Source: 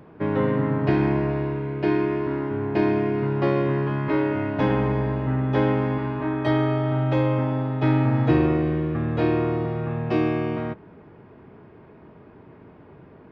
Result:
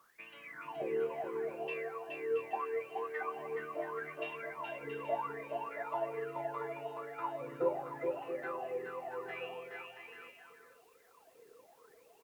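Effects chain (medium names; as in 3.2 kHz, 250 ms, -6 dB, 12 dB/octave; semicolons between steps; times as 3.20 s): reverb removal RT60 0.8 s; wah-wah 0.7 Hz 410–2600 Hz, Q 17; added noise white -77 dBFS; bouncing-ball echo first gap 460 ms, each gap 0.6×, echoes 5; speed mistake 44.1 kHz file played as 48 kHz; trim +3 dB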